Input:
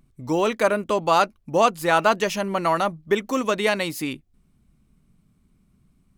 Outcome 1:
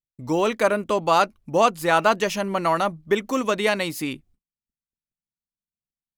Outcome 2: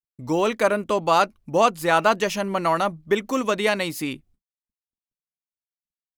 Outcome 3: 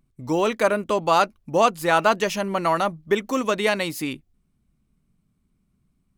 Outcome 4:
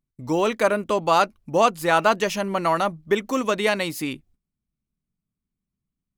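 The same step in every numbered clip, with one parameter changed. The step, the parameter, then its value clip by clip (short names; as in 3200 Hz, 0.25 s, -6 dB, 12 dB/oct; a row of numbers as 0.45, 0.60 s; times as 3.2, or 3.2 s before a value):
gate, range: -43, -59, -7, -23 dB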